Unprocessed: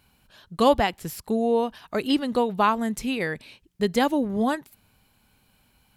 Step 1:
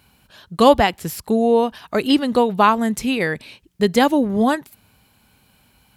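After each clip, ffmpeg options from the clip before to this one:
ffmpeg -i in.wav -af "highpass=46,volume=6.5dB" out.wav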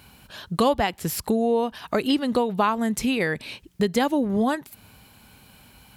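ffmpeg -i in.wav -af "acompressor=threshold=-30dB:ratio=2.5,volume=5.5dB" out.wav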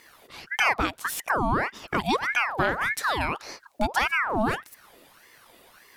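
ffmpeg -i in.wav -af "aeval=exprs='val(0)*sin(2*PI*1200*n/s+1200*0.65/1.7*sin(2*PI*1.7*n/s))':channel_layout=same" out.wav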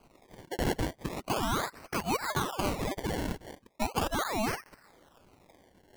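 ffmpeg -i in.wav -af "acrusher=samples=24:mix=1:aa=0.000001:lfo=1:lforange=24:lforate=0.38,volume=-6dB" out.wav

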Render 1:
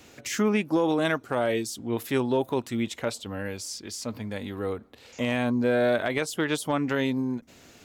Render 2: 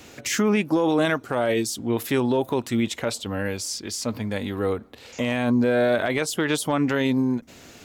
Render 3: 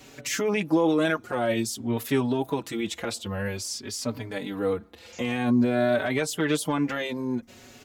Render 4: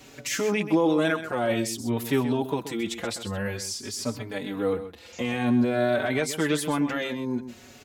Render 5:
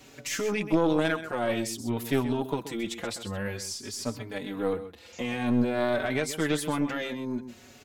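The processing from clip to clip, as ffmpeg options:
ffmpeg -i in.wav -af "alimiter=limit=-18.5dB:level=0:latency=1:release=39,volume=6dB" out.wav
ffmpeg -i in.wav -filter_complex "[0:a]asplit=2[link_01][link_02];[link_02]adelay=4.8,afreqshift=0.5[link_03];[link_01][link_03]amix=inputs=2:normalize=1" out.wav
ffmpeg -i in.wav -af "aecho=1:1:129:0.266" out.wav
ffmpeg -i in.wav -af "aeval=exprs='0.282*(cos(1*acos(clip(val(0)/0.282,-1,1)))-cos(1*PI/2))+0.0891*(cos(2*acos(clip(val(0)/0.282,-1,1)))-cos(2*PI/2))+0.002*(cos(8*acos(clip(val(0)/0.282,-1,1)))-cos(8*PI/2))':channel_layout=same,volume=-3dB" out.wav

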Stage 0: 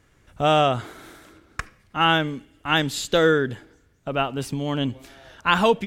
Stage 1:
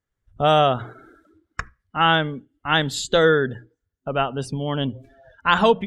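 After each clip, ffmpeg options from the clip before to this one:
ffmpeg -i in.wav -af "bandreject=frequency=60:width_type=h:width=6,bandreject=frequency=120:width_type=h:width=6,bandreject=frequency=180:width_type=h:width=6,afftdn=noise_reduction=26:noise_floor=-40,superequalizer=6b=0.631:12b=0.631,volume=2dB" out.wav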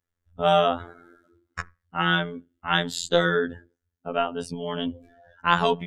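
ffmpeg -i in.wav -af "afftfilt=real='hypot(re,im)*cos(PI*b)':imag='0':win_size=2048:overlap=0.75" out.wav

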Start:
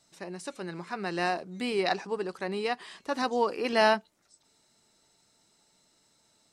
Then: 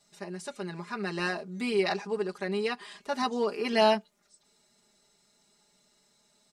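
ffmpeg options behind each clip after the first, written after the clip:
ffmpeg -i in.wav -af "aecho=1:1:4.9:0.99,volume=-3dB" out.wav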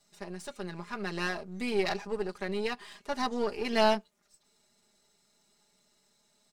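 ffmpeg -i in.wav -af "aeval=exprs='if(lt(val(0),0),0.447*val(0),val(0))':channel_layout=same" out.wav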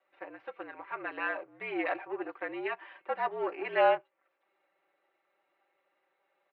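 ffmpeg -i in.wav -af "highpass=frequency=470:width_type=q:width=0.5412,highpass=frequency=470:width_type=q:width=1.307,lowpass=frequency=2600:width_type=q:width=0.5176,lowpass=frequency=2600:width_type=q:width=0.7071,lowpass=frequency=2600:width_type=q:width=1.932,afreqshift=-57,volume=1.5dB" out.wav

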